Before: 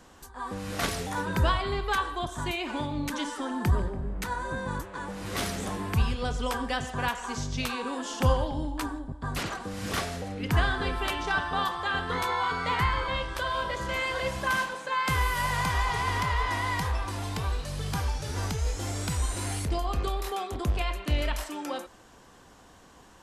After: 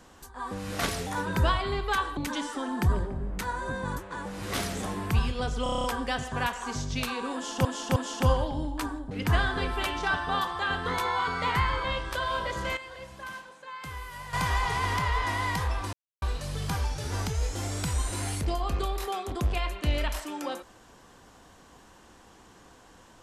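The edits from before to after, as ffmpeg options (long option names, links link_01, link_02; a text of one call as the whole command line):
ffmpeg -i in.wav -filter_complex "[0:a]asplit=16[link_01][link_02][link_03][link_04][link_05][link_06][link_07][link_08][link_09][link_10][link_11][link_12][link_13][link_14][link_15][link_16];[link_01]atrim=end=2.172[link_17];[link_02]atrim=start=2.998:end=6.492[link_18];[link_03]atrim=start=6.458:end=6.492[link_19];[link_04]atrim=start=6.458:end=6.492[link_20];[link_05]atrim=start=6.458:end=6.492[link_21];[link_06]atrim=start=6.458:end=6.492[link_22];[link_07]atrim=start=6.458:end=6.492[link_23];[link_08]atrim=start=6.458:end=6.492[link_24];[link_09]atrim=start=6.458:end=8.272[link_25];[link_10]atrim=start=7.958:end=8.272[link_26];[link_11]atrim=start=7.958:end=9.112[link_27];[link_12]atrim=start=10.348:end=14.01,asetpts=PTS-STARTPTS,afade=type=out:start_time=3.532:duration=0.13:curve=log:silence=0.223872[link_28];[link_13]atrim=start=14.01:end=15.57,asetpts=PTS-STARTPTS,volume=-13dB[link_29];[link_14]atrim=start=15.57:end=17.17,asetpts=PTS-STARTPTS,afade=type=in:duration=0.13:curve=log:silence=0.223872,afade=type=out:start_time=1.596:duration=0.004:curve=hsin[link_30];[link_15]atrim=start=17.17:end=17.46,asetpts=PTS-STARTPTS,volume=0[link_31];[link_16]atrim=start=17.46,asetpts=PTS-STARTPTS,afade=type=in:duration=0.004:curve=hsin[link_32];[link_17][link_18]acrossfade=duration=0.004:curve1=hsin:curve2=hsin[link_33];[link_33][link_19]acrossfade=duration=0.004:curve1=hsin:curve2=hsin[link_34];[link_34][link_20]acrossfade=duration=0.004:curve1=hsin:curve2=hsin[link_35];[link_35][link_21]acrossfade=duration=0.004:curve1=hsin:curve2=hsin[link_36];[link_36][link_22]acrossfade=duration=0.004:curve1=hsin:curve2=hsin[link_37];[link_37][link_23]acrossfade=duration=0.004:curve1=hsin:curve2=hsin[link_38];[link_38][link_24]acrossfade=duration=0.004:curve1=hsin:curve2=hsin[link_39];[link_39][link_25]acrossfade=duration=0.004:curve1=hsin:curve2=hsin[link_40];[link_40][link_26]acrossfade=duration=0.004:curve1=hsin:curve2=hsin[link_41];[link_41][link_27]acrossfade=duration=0.004:curve1=hsin:curve2=hsin[link_42];[link_28][link_29][link_30][link_31][link_32]concat=n=5:v=0:a=1[link_43];[link_42][link_43]acrossfade=duration=0.004:curve1=hsin:curve2=hsin" out.wav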